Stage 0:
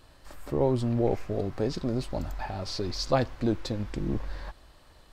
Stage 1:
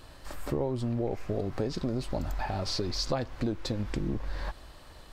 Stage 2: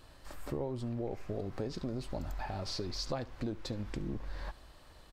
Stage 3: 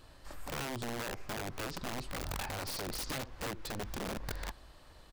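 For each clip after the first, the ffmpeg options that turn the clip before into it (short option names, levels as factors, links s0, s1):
-af "acompressor=threshold=0.0224:ratio=6,volume=1.88"
-af "aecho=1:1:71:0.0841,volume=0.473"
-af "aeval=exprs='(mod(42.2*val(0)+1,2)-1)/42.2':c=same"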